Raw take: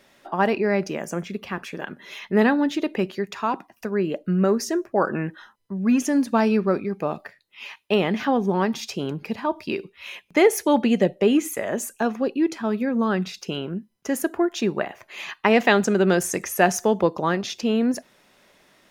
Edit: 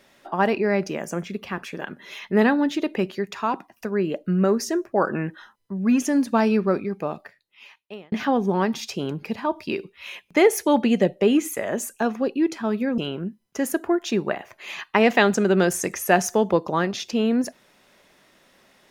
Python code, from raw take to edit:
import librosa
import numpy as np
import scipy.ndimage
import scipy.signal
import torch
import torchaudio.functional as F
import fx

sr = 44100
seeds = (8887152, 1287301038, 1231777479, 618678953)

y = fx.edit(x, sr, fx.fade_out_span(start_s=6.8, length_s=1.32),
    fx.cut(start_s=12.98, length_s=0.5), tone=tone)